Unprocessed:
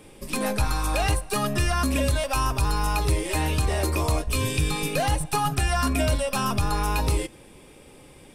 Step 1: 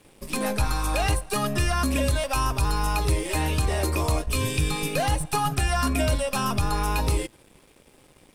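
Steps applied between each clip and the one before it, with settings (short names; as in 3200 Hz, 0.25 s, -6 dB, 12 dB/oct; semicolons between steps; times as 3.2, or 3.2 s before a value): crossover distortion -50.5 dBFS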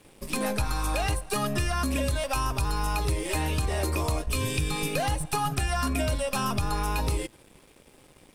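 compressor 3:1, threshold -24 dBFS, peak gain reduction 5.5 dB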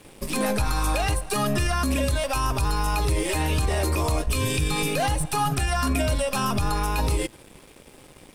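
limiter -21.5 dBFS, peak gain reduction 7 dB; gain +6.5 dB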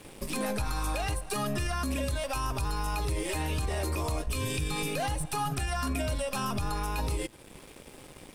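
compressor 1.5:1, threshold -41 dBFS, peak gain reduction 8 dB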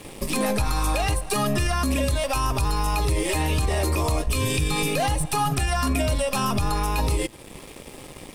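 notch 1500 Hz, Q 8.8; gain +8 dB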